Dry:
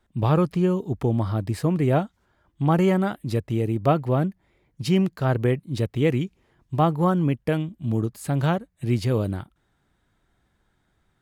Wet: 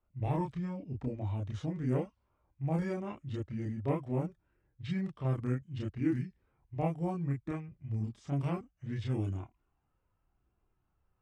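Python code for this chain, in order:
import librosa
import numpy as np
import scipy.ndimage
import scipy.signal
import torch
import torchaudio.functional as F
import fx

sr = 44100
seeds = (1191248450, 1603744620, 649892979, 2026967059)

y = fx.formant_shift(x, sr, semitones=-5)
y = fx.chorus_voices(y, sr, voices=6, hz=0.22, base_ms=30, depth_ms=2.0, mix_pct=50)
y = fx.env_lowpass(y, sr, base_hz=2200.0, full_db=-18.0)
y = y * librosa.db_to_amplitude(-8.5)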